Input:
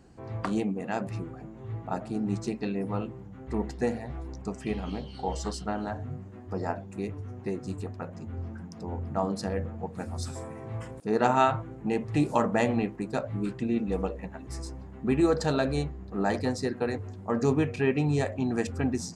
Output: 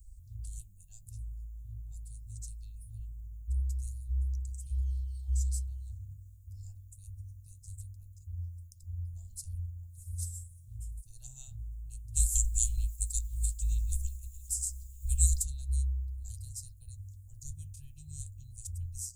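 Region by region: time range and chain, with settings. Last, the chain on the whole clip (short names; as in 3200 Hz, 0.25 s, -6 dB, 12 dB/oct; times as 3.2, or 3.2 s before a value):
12.15–15.43 spectral limiter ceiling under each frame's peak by 27 dB + bell 7400 Hz +7 dB 0.26 oct
whole clip: inverse Chebyshev band-stop 210–2200 Hz, stop band 70 dB; band shelf 6800 Hz -10 dB; gain +17.5 dB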